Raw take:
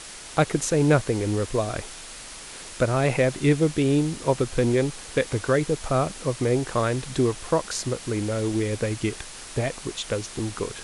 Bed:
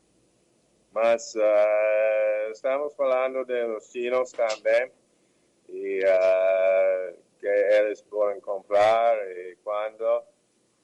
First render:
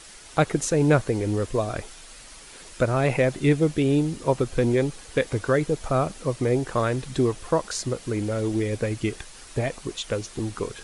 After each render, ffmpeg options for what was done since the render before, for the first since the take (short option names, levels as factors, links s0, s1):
-af "afftdn=nr=7:nf=-40"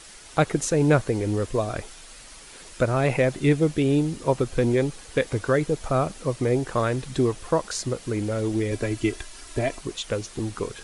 -filter_complex "[0:a]asettb=1/sr,asplit=3[s0][s1][s2];[s0]atrim=end=8.714[s3];[s1]atrim=start=8.71:end=9.81,asetpts=PTS-STARTPTS,afade=t=in:d=0.004:c=qsin,afade=t=out:st=1.096:d=0.004:c=qsin,aecho=1:1:3:0.65,atrim=end_sample=48510[s4];[s2]atrim=start=9.806[s5];[s3][s4]acrossfade=d=0.004:c1=hsin:c2=qsin[s6];[s6][s5]acrossfade=d=0.004:c1=qsin:c2=hsin"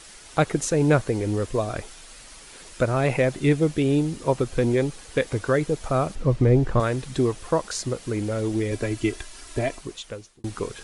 -filter_complex "[0:a]asettb=1/sr,asplit=3[s0][s1][s2];[s0]atrim=end=6.154[s3];[s1]atrim=start=6.15:end=6.8,asetpts=PTS-STARTPTS,afade=t=in:d=0.004:c=qsin,afade=t=out:st=0.646:d=0.004:c=qsin,aemphasis=mode=reproduction:type=bsi[s4];[s2]atrim=start=6.796[s5];[s3][s4]acrossfade=d=0.004:c1=hsin:c2=qsin[s6];[s6][s5]acrossfade=d=0.004:c1=qsin:c2=hsin,asplit=2[s7][s8];[s7]atrim=end=10.44,asetpts=PTS-STARTPTS,afade=t=out:st=9.63:d=0.81[s9];[s8]atrim=start=10.44,asetpts=PTS-STARTPTS,afade=t=in:d=0.004:c=hsin[s10];[s9][s10]concat=n=2:v=0:a=1"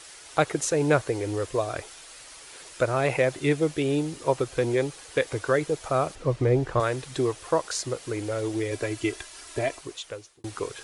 -af "highpass=f=160:p=1,equalizer=f=210:w=3:g=-14.5"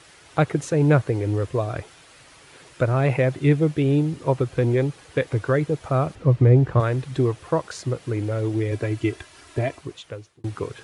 -af "highpass=93,bass=f=250:g=13,treble=f=4000:g=-9"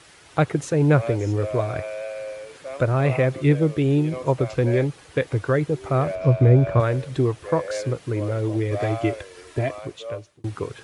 -filter_complex "[1:a]volume=0.335[s0];[0:a][s0]amix=inputs=2:normalize=0"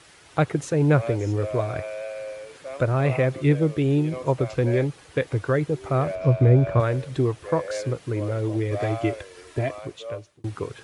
-af "volume=0.841"